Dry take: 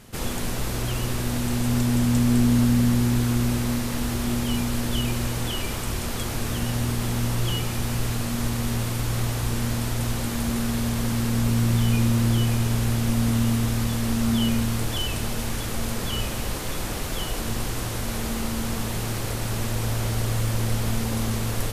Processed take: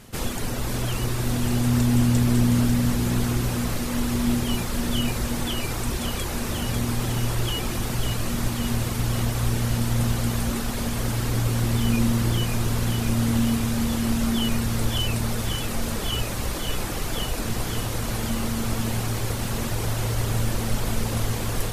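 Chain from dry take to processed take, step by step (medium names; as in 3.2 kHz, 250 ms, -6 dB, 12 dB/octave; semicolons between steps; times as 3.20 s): reverb removal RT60 0.96 s; echo whose repeats swap between lows and highs 273 ms, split 1.6 kHz, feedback 78%, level -4 dB; trim +1.5 dB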